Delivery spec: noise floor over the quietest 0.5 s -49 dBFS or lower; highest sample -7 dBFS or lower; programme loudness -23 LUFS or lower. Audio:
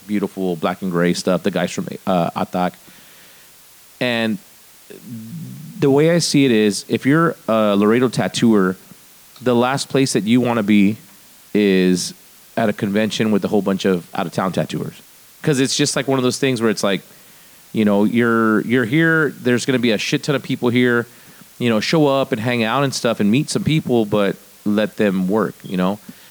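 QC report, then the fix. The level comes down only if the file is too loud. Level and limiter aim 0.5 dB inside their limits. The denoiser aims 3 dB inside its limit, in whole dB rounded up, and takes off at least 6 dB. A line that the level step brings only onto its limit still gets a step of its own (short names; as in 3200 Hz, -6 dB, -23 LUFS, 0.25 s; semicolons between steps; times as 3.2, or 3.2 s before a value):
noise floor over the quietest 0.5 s -46 dBFS: fail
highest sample -5.0 dBFS: fail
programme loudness -18.0 LUFS: fail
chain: gain -5.5 dB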